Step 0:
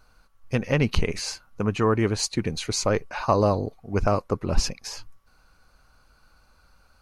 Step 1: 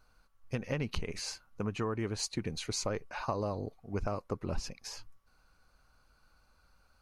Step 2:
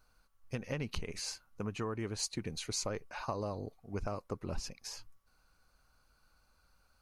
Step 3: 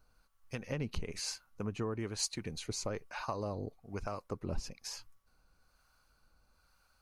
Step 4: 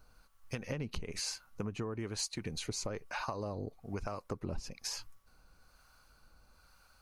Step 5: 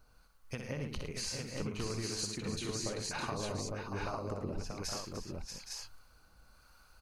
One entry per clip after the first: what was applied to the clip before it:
compression 10:1, threshold -21 dBFS, peak gain reduction 9.5 dB; trim -8 dB
treble shelf 5.7 kHz +6 dB; trim -3.5 dB
harmonic tremolo 1.1 Hz, depth 50%, crossover 700 Hz; trim +2 dB
compression 4:1, threshold -42 dBFS, peak gain reduction 10.5 dB; trim +6.5 dB
multi-tap echo 62/109/298/634/818/856 ms -7/-10/-11/-6.5/-9.5/-3 dB; trim -2 dB

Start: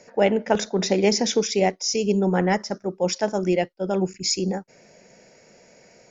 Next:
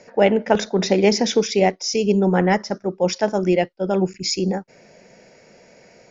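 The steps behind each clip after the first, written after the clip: low-pass 5.4 kHz 12 dB/octave; trim +3.5 dB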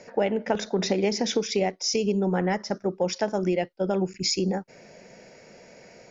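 compression 4:1, threshold -22 dBFS, peak gain reduction 10.5 dB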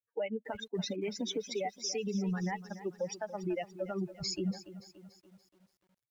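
expander on every frequency bin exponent 3; peak limiter -27 dBFS, peak gain reduction 10.5 dB; bit-crushed delay 287 ms, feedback 55%, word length 10-bit, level -14.5 dB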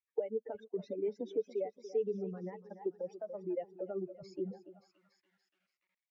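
auto-wah 460–2200 Hz, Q 2.9, down, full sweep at -37 dBFS; Shepard-style phaser falling 1.2 Hz; trim +5.5 dB

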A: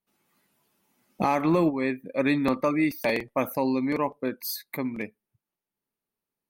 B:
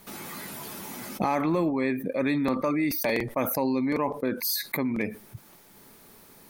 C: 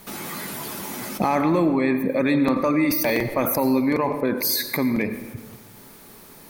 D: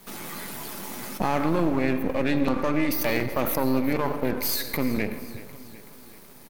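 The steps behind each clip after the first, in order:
peaking EQ 2.8 kHz -5.5 dB 0.21 oct; level flattener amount 70%; trim -4 dB
in parallel at +0.5 dB: peak limiter -20 dBFS, peak gain reduction 6.5 dB; on the sum: reverberation RT60 1.3 s, pre-delay 80 ms, DRR 10 dB
partial rectifier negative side -12 dB; feedback delay 377 ms, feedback 55%, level -17 dB; trim -1 dB

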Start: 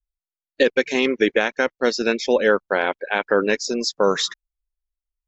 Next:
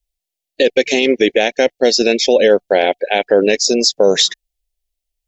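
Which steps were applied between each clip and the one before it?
FFT filter 200 Hz 0 dB, 720 Hz +6 dB, 1.2 kHz -19 dB, 1.8 kHz -1 dB, 2.9 kHz +6 dB; loudness maximiser +7.5 dB; trim -1 dB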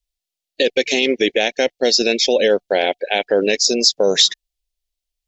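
peaking EQ 4.2 kHz +5.5 dB 1.7 oct; trim -4.5 dB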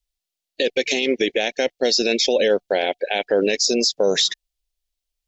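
peak limiter -9 dBFS, peak gain reduction 7.5 dB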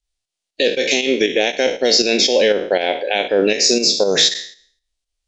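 spectral sustain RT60 0.51 s; volume shaper 119 bpm, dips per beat 2, -7 dB, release 166 ms; resampled via 22.05 kHz; trim +3 dB

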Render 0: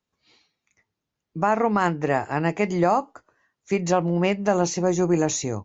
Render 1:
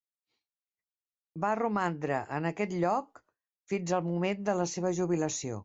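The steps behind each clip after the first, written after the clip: expander -49 dBFS; trim -8.5 dB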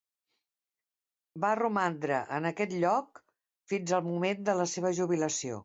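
bass shelf 140 Hz -11 dB; trim +2 dB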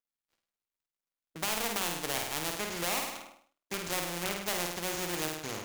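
dead-time distortion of 0.28 ms; flutter echo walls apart 8.8 m, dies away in 0.52 s; spectrum-flattening compressor 2:1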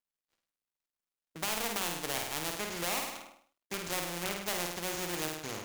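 companded quantiser 8-bit; trim -1.5 dB

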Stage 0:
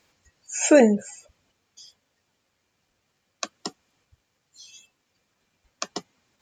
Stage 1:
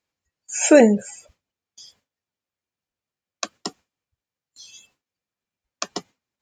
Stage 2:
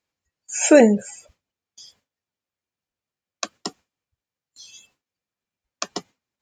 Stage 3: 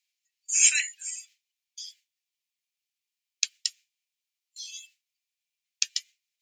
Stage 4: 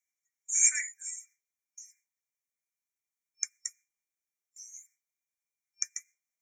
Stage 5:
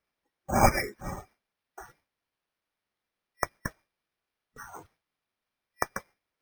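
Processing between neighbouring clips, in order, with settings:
gate with hold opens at -45 dBFS; trim +3 dB
no audible change
steep high-pass 2.2 kHz 36 dB/octave; trim +4 dB
FFT band-reject 2.4–5.4 kHz; trim -3.5 dB
careless resampling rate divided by 6×, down none, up hold; trim +3.5 dB

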